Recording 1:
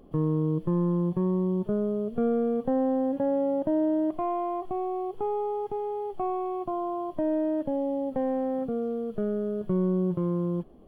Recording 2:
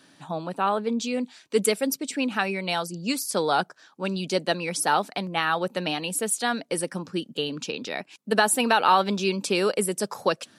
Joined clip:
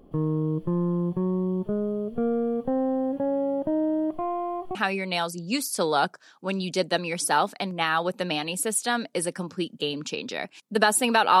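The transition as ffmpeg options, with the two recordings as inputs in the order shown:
ffmpeg -i cue0.wav -i cue1.wav -filter_complex "[0:a]apad=whole_dur=11.4,atrim=end=11.4,atrim=end=4.752[link_01];[1:a]atrim=start=2.308:end=8.96[link_02];[link_01][link_02]acrossfade=duration=0.004:curve1=hsin:curve2=hsin" out.wav

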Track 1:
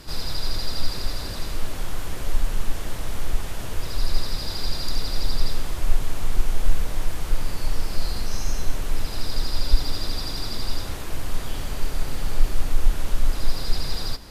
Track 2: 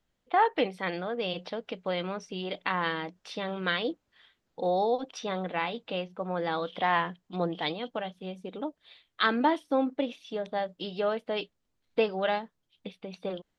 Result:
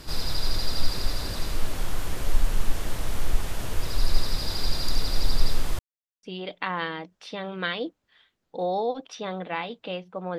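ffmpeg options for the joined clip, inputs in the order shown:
ffmpeg -i cue0.wav -i cue1.wav -filter_complex "[0:a]apad=whole_dur=10.38,atrim=end=10.38,asplit=2[link_01][link_02];[link_01]atrim=end=5.79,asetpts=PTS-STARTPTS,afade=type=out:start_time=5.786:duration=0.004:curve=hsin[link_03];[link_02]atrim=start=5.79:end=6.23,asetpts=PTS-STARTPTS,volume=0[link_04];[1:a]atrim=start=2.27:end=6.42,asetpts=PTS-STARTPTS,afade=type=in:duration=0.004:curve=hsin[link_05];[link_03][link_04][link_05]concat=n=3:v=0:a=1" out.wav

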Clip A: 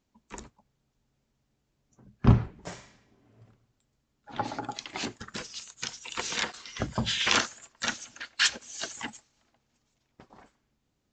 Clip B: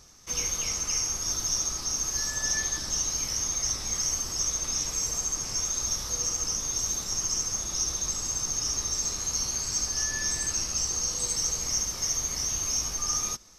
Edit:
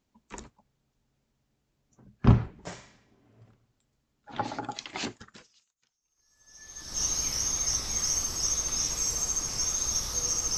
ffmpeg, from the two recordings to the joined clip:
ffmpeg -i cue0.wav -i cue1.wav -filter_complex "[0:a]apad=whole_dur=10.57,atrim=end=10.57,atrim=end=7.03,asetpts=PTS-STARTPTS[link_01];[1:a]atrim=start=1.07:end=6.53,asetpts=PTS-STARTPTS[link_02];[link_01][link_02]acrossfade=duration=1.92:curve1=exp:curve2=exp" out.wav

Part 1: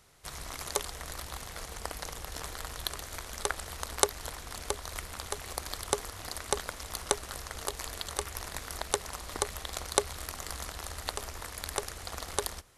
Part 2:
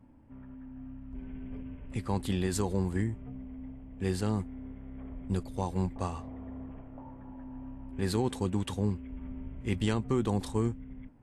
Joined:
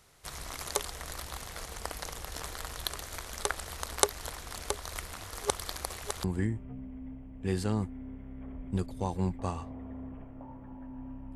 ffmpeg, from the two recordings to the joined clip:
ffmpeg -i cue0.wav -i cue1.wav -filter_complex "[0:a]apad=whole_dur=11.35,atrim=end=11.35,asplit=2[link_01][link_02];[link_01]atrim=end=5.192[link_03];[link_02]atrim=start=5.188:end=6.242,asetpts=PTS-STARTPTS,areverse[link_04];[1:a]atrim=start=2.808:end=7.92[link_05];[link_03][link_04]acrossfade=duration=0.004:curve1=hsin:curve2=hsin[link_06];[link_06][link_05]acrossfade=duration=0.004:curve1=hsin:curve2=hsin" out.wav

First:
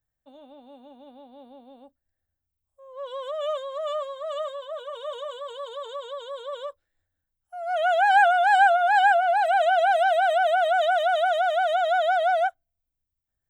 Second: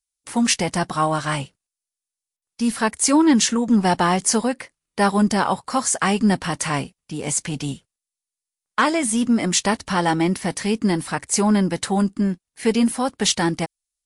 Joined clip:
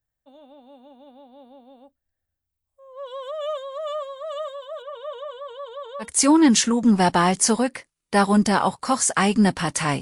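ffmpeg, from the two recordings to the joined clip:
ffmpeg -i cue0.wav -i cue1.wav -filter_complex "[0:a]asettb=1/sr,asplit=3[link_01][link_02][link_03];[link_01]atrim=end=4.824[link_04];[link_02]atrim=start=4.82:end=6.11,asetpts=PTS-STARTPTS,afade=type=in:duration=0.004:curve=qsin,afade=type=out:start_time=1.286:duration=0.004:curve=qsin,bass=frequency=250:gain=4,treble=frequency=4000:gain=-12[link_05];[link_03]atrim=start=6.106[link_06];[link_04][link_05]acrossfade=duration=0.004:curve1=hsin:curve2=qsin[link_07];[link_07][link_06]acrossfade=duration=0.004:curve1=qsin:curve2=hsin,apad=whole_dur=10.01,atrim=end=10.01,atrim=end=6.11,asetpts=PTS-STARTPTS[link_08];[1:a]atrim=start=2.84:end=6.86,asetpts=PTS-STARTPTS[link_09];[link_08][link_09]acrossfade=duration=0.12:curve1=tri:curve2=tri" out.wav

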